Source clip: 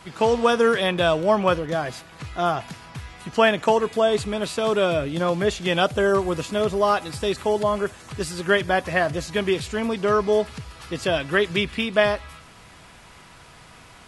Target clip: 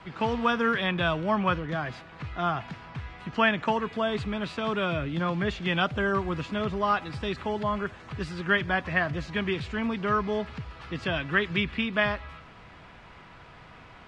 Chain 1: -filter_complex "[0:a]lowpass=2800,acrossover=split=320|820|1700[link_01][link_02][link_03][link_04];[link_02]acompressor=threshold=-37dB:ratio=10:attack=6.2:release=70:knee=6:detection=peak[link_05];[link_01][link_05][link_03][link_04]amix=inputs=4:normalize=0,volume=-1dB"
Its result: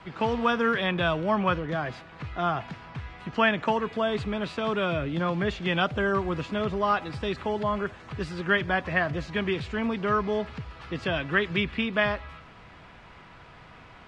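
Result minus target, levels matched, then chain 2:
downward compressor: peak gain reduction −10 dB
-filter_complex "[0:a]lowpass=2800,acrossover=split=320|820|1700[link_01][link_02][link_03][link_04];[link_02]acompressor=threshold=-48dB:ratio=10:attack=6.2:release=70:knee=6:detection=peak[link_05];[link_01][link_05][link_03][link_04]amix=inputs=4:normalize=0,volume=-1dB"

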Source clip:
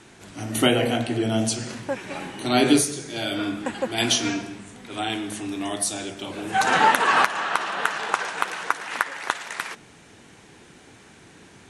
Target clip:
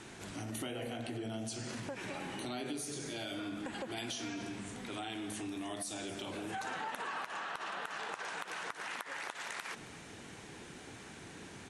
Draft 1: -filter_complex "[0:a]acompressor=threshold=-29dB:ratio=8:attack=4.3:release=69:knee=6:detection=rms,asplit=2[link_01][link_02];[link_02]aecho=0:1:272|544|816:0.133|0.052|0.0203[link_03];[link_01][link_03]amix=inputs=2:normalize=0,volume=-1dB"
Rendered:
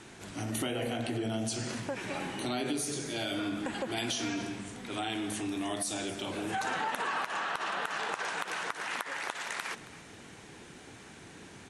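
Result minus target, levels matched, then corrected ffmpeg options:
downward compressor: peak gain reduction −7 dB
-filter_complex "[0:a]acompressor=threshold=-37dB:ratio=8:attack=4.3:release=69:knee=6:detection=rms,asplit=2[link_01][link_02];[link_02]aecho=0:1:272|544|816:0.133|0.052|0.0203[link_03];[link_01][link_03]amix=inputs=2:normalize=0,volume=-1dB"

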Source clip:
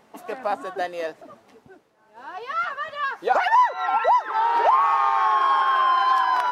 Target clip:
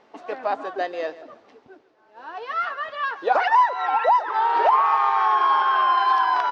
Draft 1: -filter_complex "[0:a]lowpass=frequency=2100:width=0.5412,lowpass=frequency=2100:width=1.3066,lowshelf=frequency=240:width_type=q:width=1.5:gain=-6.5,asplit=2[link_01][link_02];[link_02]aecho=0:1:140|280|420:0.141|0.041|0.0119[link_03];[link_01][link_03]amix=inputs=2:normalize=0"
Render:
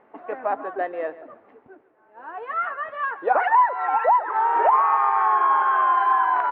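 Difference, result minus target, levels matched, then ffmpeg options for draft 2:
4,000 Hz band −14.0 dB
-filter_complex "[0:a]lowpass=frequency=5500:width=0.5412,lowpass=frequency=5500:width=1.3066,lowshelf=frequency=240:width_type=q:width=1.5:gain=-6.5,asplit=2[link_01][link_02];[link_02]aecho=0:1:140|280|420:0.141|0.041|0.0119[link_03];[link_01][link_03]amix=inputs=2:normalize=0"

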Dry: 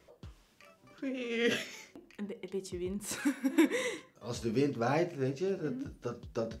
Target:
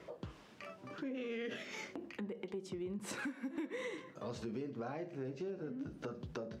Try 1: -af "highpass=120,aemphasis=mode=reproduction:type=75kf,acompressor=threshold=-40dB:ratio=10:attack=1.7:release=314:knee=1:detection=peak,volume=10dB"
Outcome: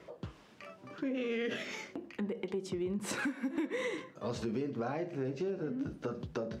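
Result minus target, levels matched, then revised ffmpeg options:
downward compressor: peak gain reduction −6.5 dB
-af "highpass=120,aemphasis=mode=reproduction:type=75kf,acompressor=threshold=-47dB:ratio=10:attack=1.7:release=314:knee=1:detection=peak,volume=10dB"

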